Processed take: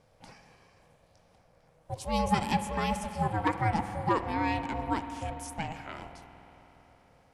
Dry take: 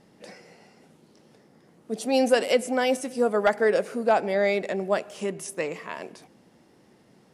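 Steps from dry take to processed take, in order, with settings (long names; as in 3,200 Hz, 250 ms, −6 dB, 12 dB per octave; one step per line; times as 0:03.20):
spring reverb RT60 4 s, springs 48 ms, chirp 25 ms, DRR 9 dB
ring modulation 320 Hz
level −4 dB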